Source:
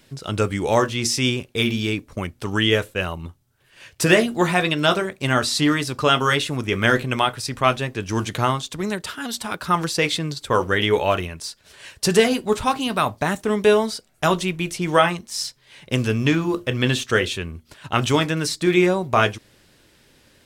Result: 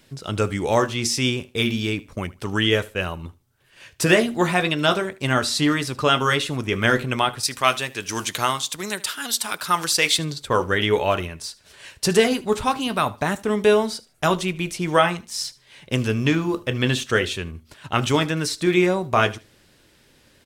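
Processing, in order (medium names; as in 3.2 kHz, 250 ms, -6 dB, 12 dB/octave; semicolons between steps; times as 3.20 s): 7.43–10.19 s: tilt EQ +3 dB/octave; feedback delay 76 ms, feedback 23%, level -21 dB; trim -1 dB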